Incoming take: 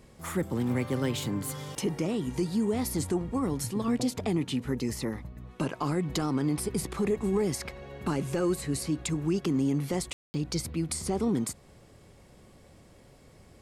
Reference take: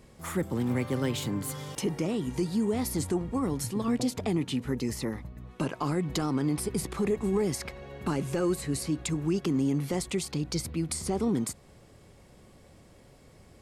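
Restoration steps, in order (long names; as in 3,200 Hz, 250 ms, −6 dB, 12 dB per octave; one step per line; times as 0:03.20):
ambience match 0:10.13–0:10.34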